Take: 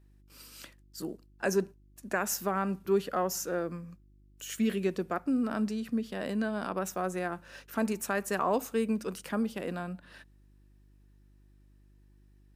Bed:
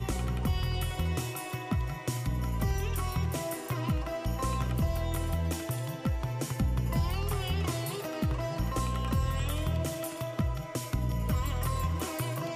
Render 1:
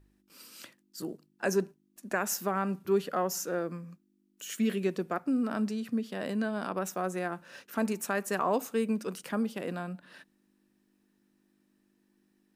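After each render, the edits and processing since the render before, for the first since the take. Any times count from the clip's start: de-hum 50 Hz, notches 3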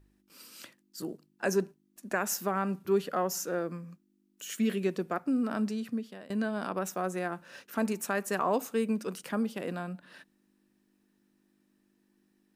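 5.82–6.30 s: fade out linear, to -20.5 dB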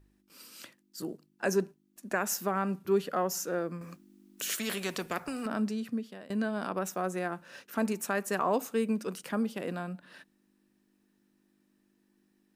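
3.81–5.46 s: spectrum-flattening compressor 2:1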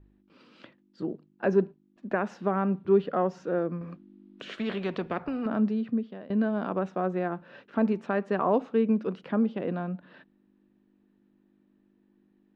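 Chebyshev low-pass 3.6 kHz, order 3; tilt shelf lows +6 dB, about 1.5 kHz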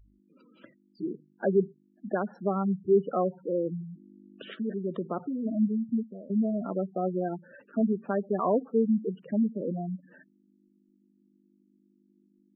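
spectral gate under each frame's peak -10 dB strong; dynamic bell 2.4 kHz, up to -3 dB, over -56 dBFS, Q 2.1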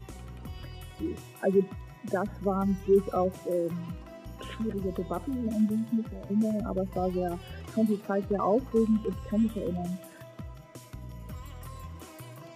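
add bed -12 dB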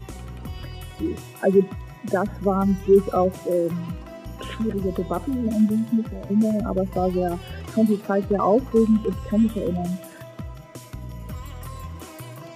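trim +7 dB

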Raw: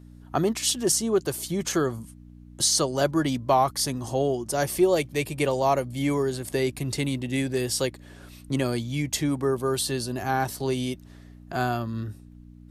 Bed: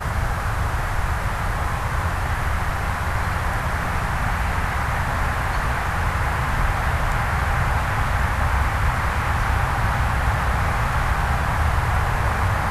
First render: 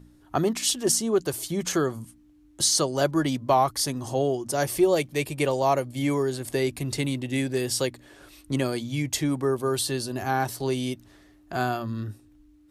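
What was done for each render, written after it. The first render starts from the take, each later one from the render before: de-hum 60 Hz, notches 4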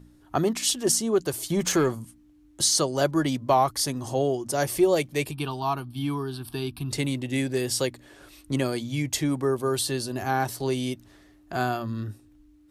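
1.50–1.95 s: waveshaping leveller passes 1; 5.31–6.91 s: static phaser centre 2 kHz, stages 6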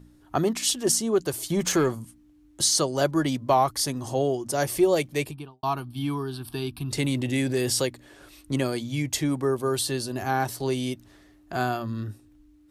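5.16–5.63 s: studio fade out; 6.97–7.84 s: level flattener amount 50%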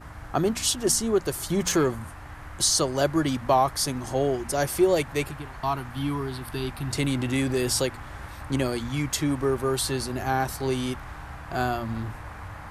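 add bed -18.5 dB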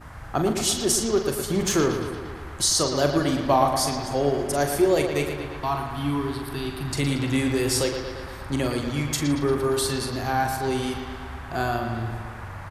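doubling 42 ms -8 dB; on a send: bucket-brigade echo 115 ms, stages 4096, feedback 65%, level -7.5 dB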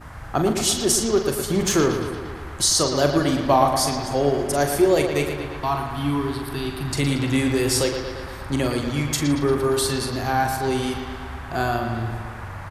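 trim +2.5 dB

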